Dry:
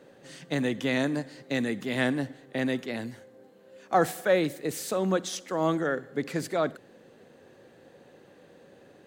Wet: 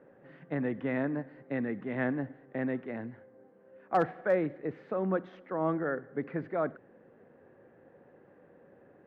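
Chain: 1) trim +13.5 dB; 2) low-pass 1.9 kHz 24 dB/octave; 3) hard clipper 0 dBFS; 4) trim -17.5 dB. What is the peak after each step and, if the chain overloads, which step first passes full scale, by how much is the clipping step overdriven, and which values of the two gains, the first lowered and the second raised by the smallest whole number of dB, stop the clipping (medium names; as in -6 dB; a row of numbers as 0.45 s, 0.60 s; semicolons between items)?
+3.0 dBFS, +3.0 dBFS, 0.0 dBFS, -17.5 dBFS; step 1, 3.0 dB; step 1 +10.5 dB, step 4 -14.5 dB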